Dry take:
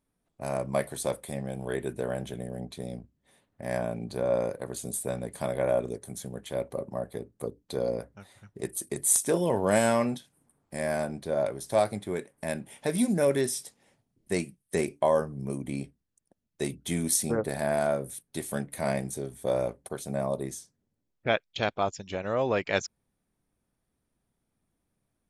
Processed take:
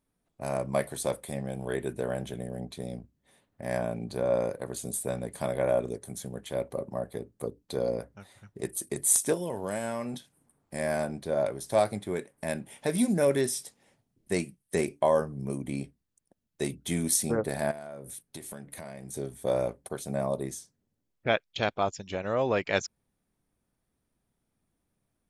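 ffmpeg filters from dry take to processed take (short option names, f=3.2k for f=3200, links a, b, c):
-filter_complex "[0:a]asettb=1/sr,asplit=3[a][b][c];[a]atrim=end=9.334[d];[b]atrim=start=9.33:end=10.14,asetpts=PTS-STARTPTS,afade=t=in:d=0.004:c=qsin,afade=t=out:st=0.806:d=0.004:c=qsin,acrossover=split=3000|6400[e][f][g];[e]acompressor=threshold=-31dB:ratio=4[h];[f]acompressor=threshold=-59dB:ratio=4[i];[g]acompressor=threshold=-47dB:ratio=4[j];[h][i][j]amix=inputs=3:normalize=0[k];[c]atrim=start=10.136[l];[d][k]acrossfade=d=0.004:c1=hsin:c2=qsin[m];[m][l]acrossfade=d=0.004:c1=qsin:c2=hsin,asettb=1/sr,asplit=3[n][o][p];[n]atrim=end=17.714[q];[o]atrim=start=17.71:end=19.14,asetpts=PTS-STARTPTS,afade=t=in:d=0.004:c=qsin,afade=t=out:st=1.426:d=0.004:c=qsin,acompressor=threshold=-37dB:ratio=12:attack=3.2:release=140:knee=1:detection=peak[r];[p]atrim=start=19.136[s];[q][r]acrossfade=d=0.004:c1=hsin:c2=qsin[t];[t][s]acrossfade=d=0.004:c1=qsin:c2=hsin"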